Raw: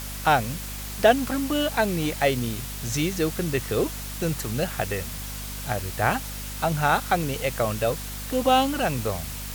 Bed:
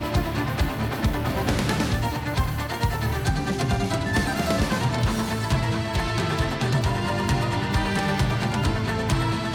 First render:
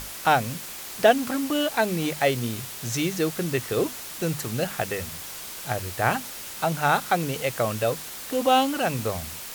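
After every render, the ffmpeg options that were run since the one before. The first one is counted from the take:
-af "bandreject=f=50:t=h:w=6,bandreject=f=100:t=h:w=6,bandreject=f=150:t=h:w=6,bandreject=f=200:t=h:w=6,bandreject=f=250:t=h:w=6"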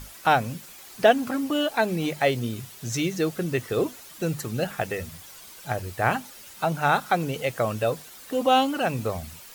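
-af "afftdn=nr=10:nf=-38"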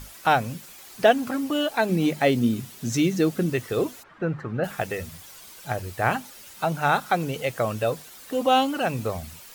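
-filter_complex "[0:a]asettb=1/sr,asplit=3[a][b][c];[a]atrim=end=1.894[d];[b]atrim=start=1.89:end=3.5,asetpts=PTS-STARTPTS,afade=t=in:d=0.004:c=qsin,afade=t=out:st=1.606:d=0.004:c=qsin,equalizer=f=240:t=o:w=0.82:g=10.5[e];[c]atrim=start=3.496[f];[d][e]acrossfade=d=0.004:c1=hsin:c2=qsin[g];[g][f]acrossfade=d=0.004:c1=qsin:c2=hsin,asplit=3[h][i][j];[h]afade=t=out:st=4.02:d=0.02[k];[i]lowpass=f=1.5k:t=q:w=1.8,afade=t=in:st=4.02:d=0.02,afade=t=out:st=4.63:d=0.02[l];[j]afade=t=in:st=4.63:d=0.02[m];[k][l][m]amix=inputs=3:normalize=0"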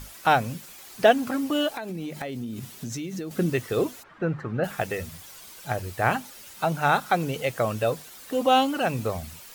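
-filter_complex "[0:a]asettb=1/sr,asplit=3[a][b][c];[a]atrim=end=1.754[d];[b]atrim=start=1.75:end=3.31,asetpts=PTS-STARTPTS,afade=t=in:d=0.004:c=qsin,afade=t=out:st=1.556:d=0.004:c=qsin,acompressor=threshold=-29dB:ratio=16:attack=3.2:release=140:knee=1:detection=peak[e];[c]atrim=start=3.306[f];[d][e]acrossfade=d=0.004:c1=hsin:c2=qsin[g];[g][f]acrossfade=d=0.004:c1=qsin:c2=hsin"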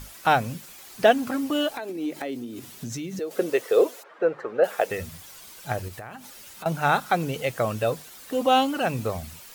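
-filter_complex "[0:a]asettb=1/sr,asplit=3[a][b][c];[a]atrim=end=1.794[d];[b]atrim=start=1.79:end=2.68,asetpts=PTS-STARTPTS,afade=t=in:d=0.004:c=qsin,afade=t=out:st=0.886:d=0.004:c=qsin,lowshelf=f=230:t=q:w=3:g=-8[e];[c]atrim=start=2.676[f];[d][e]acrossfade=d=0.004:c1=hsin:c2=qsin[g];[g][f]acrossfade=d=0.004:c1=qsin:c2=hsin,asettb=1/sr,asplit=3[h][i][j];[h]atrim=end=3.194[k];[i]atrim=start=3.19:end=4.91,asetpts=PTS-STARTPTS,afade=t=in:d=0.004:c=qsin,afade=t=out:st=1.716:d=0.004:c=qsin,highpass=f=480:t=q:w=2.8[l];[j]atrim=start=4.906[m];[k][l]acrossfade=d=0.004:c1=hsin:c2=qsin[n];[n][m]acrossfade=d=0.004:c1=qsin:c2=hsin,asettb=1/sr,asplit=3[o][p][q];[o]atrim=end=5.884[r];[p]atrim=start=5.88:end=6.66,asetpts=PTS-STARTPTS,afade=t=in:d=0.004:c=qsin,afade=t=out:st=0.776:d=0.004:c=qsin,acompressor=threshold=-35dB:ratio=10:attack=3.2:release=140:knee=1:detection=peak[s];[q]atrim=start=6.656[t];[r][s]acrossfade=d=0.004:c1=hsin:c2=qsin[u];[u][t]acrossfade=d=0.004:c1=qsin:c2=hsin"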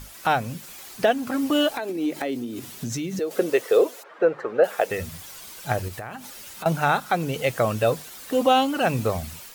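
-af "dynaudnorm=f=110:g=3:m=4dB,alimiter=limit=-8.5dB:level=0:latency=1:release=413"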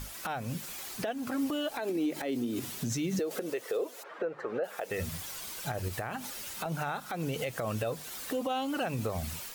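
-af "acompressor=threshold=-27dB:ratio=6,alimiter=limit=-23.5dB:level=0:latency=1:release=77"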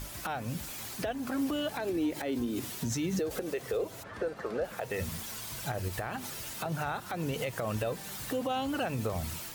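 -filter_complex "[1:a]volume=-25.5dB[a];[0:a][a]amix=inputs=2:normalize=0"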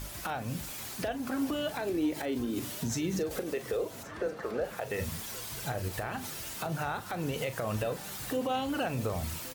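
-filter_complex "[0:a]asplit=2[a][b];[b]adelay=39,volume=-11.5dB[c];[a][c]amix=inputs=2:normalize=0,aecho=1:1:1124:0.112"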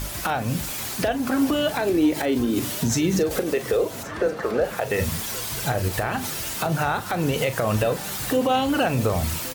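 -af "volume=10.5dB"

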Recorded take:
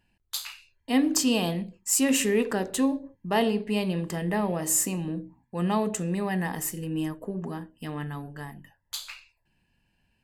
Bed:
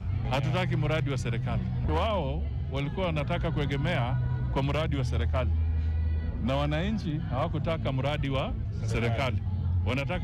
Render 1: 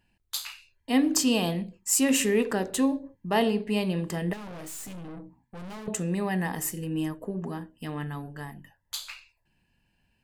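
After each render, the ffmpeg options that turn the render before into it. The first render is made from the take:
-filter_complex "[0:a]asettb=1/sr,asplit=3[a][b][c];[a]atrim=end=4.334[d];[b]atrim=start=4.33:end=5.88,asetpts=PTS-STARTPTS,afade=t=in:d=0.004:c=qsin,afade=t=out:st=1.546:d=0.004:c=qsin,aeval=exprs='(tanh(89.1*val(0)+0.45)-tanh(0.45))/89.1':c=same[e];[c]atrim=start=5.876[f];[d][e]acrossfade=d=0.004:c1=hsin:c2=qsin[g];[g][f]acrossfade=d=0.004:c1=qsin:c2=hsin"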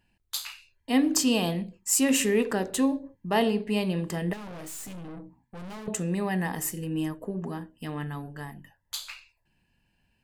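-af anull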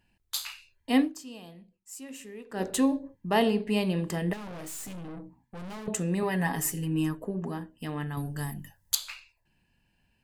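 -filter_complex "[0:a]asettb=1/sr,asplit=3[a][b][c];[a]atrim=end=6.224[d];[b]atrim=start=6.22:end=7.22,asetpts=PTS-STARTPTS,afade=t=in:d=0.004:c=qsin,afade=t=out:st=0.996:d=0.004:c=qsin,aecho=1:1:7.2:0.65,atrim=end_sample=44100[e];[c]atrim=start=7.216[f];[d][e]acrossfade=d=0.004:c1=hsin:c2=qsin[g];[g][f]acrossfade=d=0.004:c1=qsin:c2=hsin,asettb=1/sr,asplit=3[h][i][j];[h]atrim=end=8.174[k];[i]atrim=start=8.17:end=8.95,asetpts=PTS-STARTPTS,afade=t=in:d=0.004:c=qsin,afade=t=out:st=0.776:d=0.004:c=qsin,bass=f=250:g=8,treble=f=4k:g=14[l];[j]atrim=start=8.946[m];[k][l]acrossfade=d=0.004:c1=hsin:c2=qsin[n];[n][m]acrossfade=d=0.004:c1=qsin:c2=hsin,asplit=3[o][p][q];[o]atrim=end=1.15,asetpts=PTS-STARTPTS,afade=t=out:st=1.01:d=0.14:c=qua:silence=0.1[r];[p]atrim=start=1.15:end=2.48,asetpts=PTS-STARTPTS,volume=-20dB[s];[q]atrim=start=2.48,asetpts=PTS-STARTPTS,afade=t=in:d=0.14:c=qua:silence=0.1[t];[r][s][t]concat=n=3:v=0:a=1"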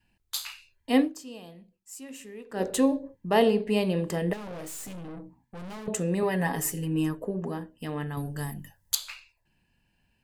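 -af "adynamicequalizer=threshold=0.00562:dfrequency=500:dqfactor=2.3:tfrequency=500:tqfactor=2.3:attack=5:release=100:ratio=0.375:range=3.5:mode=boostabove:tftype=bell"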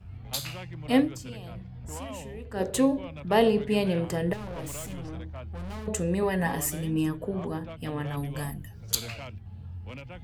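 -filter_complex "[1:a]volume=-12.5dB[a];[0:a][a]amix=inputs=2:normalize=0"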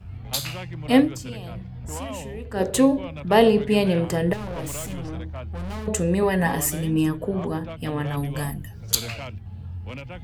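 -af "volume=5.5dB"

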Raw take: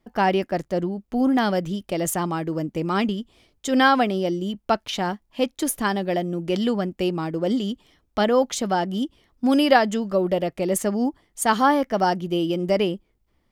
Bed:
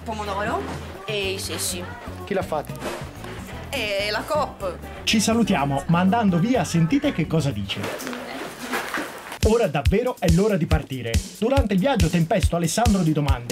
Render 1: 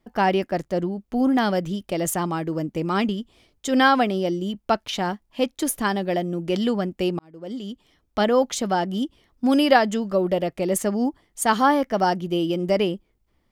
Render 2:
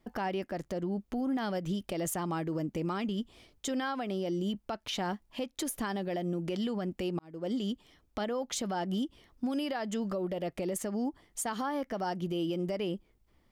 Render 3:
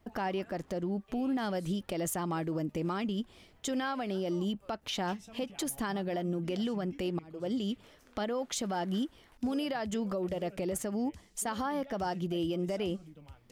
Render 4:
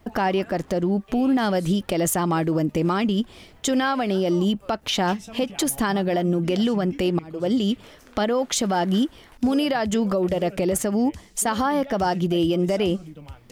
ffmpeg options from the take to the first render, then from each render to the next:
-filter_complex "[0:a]asplit=2[a][b];[a]atrim=end=7.19,asetpts=PTS-STARTPTS,afade=t=out:st=7.186:d=0.004:c=hsin[c];[b]atrim=start=7.19,asetpts=PTS-STARTPTS,afade=t=in:d=1.03[d];[c][d]concat=n=2:v=0:a=1"
-af "acompressor=threshold=-25dB:ratio=6,alimiter=level_in=1dB:limit=-24dB:level=0:latency=1:release=148,volume=-1dB"
-filter_complex "[1:a]volume=-32dB[a];[0:a][a]amix=inputs=2:normalize=0"
-af "volume=11.5dB"

